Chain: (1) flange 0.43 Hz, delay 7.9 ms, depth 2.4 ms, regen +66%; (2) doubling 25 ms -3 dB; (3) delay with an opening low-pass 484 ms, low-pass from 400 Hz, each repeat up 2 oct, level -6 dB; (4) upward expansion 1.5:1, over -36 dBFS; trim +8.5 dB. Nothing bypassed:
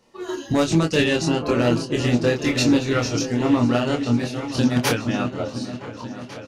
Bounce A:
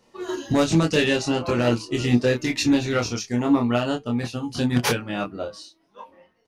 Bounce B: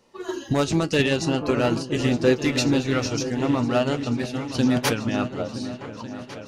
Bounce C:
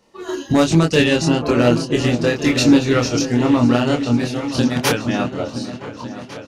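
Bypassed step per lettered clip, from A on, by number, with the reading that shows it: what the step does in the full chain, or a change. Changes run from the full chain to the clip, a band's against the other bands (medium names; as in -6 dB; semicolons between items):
3, momentary loudness spread change -3 LU; 2, crest factor change +2.0 dB; 1, momentary loudness spread change +1 LU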